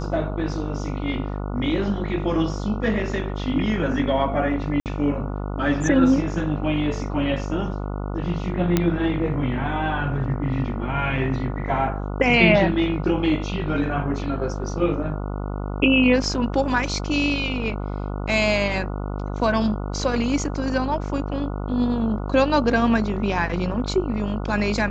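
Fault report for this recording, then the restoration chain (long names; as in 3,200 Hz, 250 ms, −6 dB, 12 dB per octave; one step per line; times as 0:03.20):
mains buzz 50 Hz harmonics 29 −28 dBFS
0:04.80–0:04.86: drop-out 58 ms
0:08.77: click −5 dBFS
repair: click removal
hum removal 50 Hz, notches 29
repair the gap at 0:04.80, 58 ms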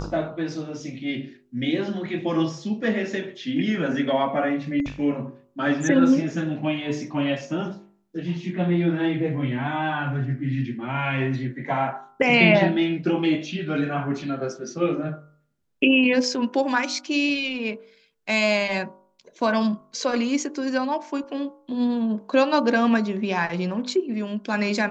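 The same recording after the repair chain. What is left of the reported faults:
none of them is left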